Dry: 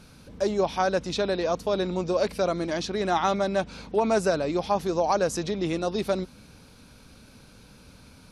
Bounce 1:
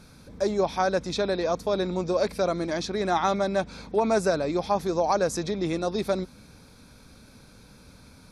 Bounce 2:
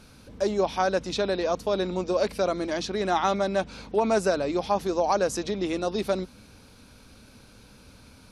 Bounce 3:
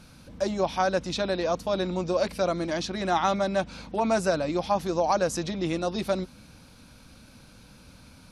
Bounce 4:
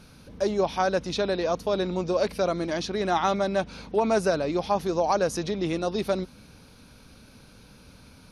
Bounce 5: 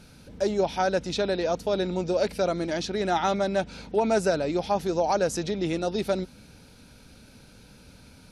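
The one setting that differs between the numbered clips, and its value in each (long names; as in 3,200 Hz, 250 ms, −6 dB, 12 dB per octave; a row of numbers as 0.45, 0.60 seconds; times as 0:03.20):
notch filter, centre frequency: 2,900, 160, 420, 7,600, 1,100 Hertz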